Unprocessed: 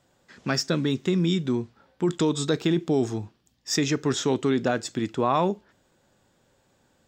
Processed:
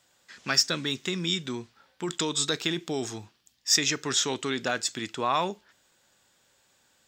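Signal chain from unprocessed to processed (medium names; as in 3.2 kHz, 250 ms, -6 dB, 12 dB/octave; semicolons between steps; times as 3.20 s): tilt shelf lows -8.5 dB; trim -2 dB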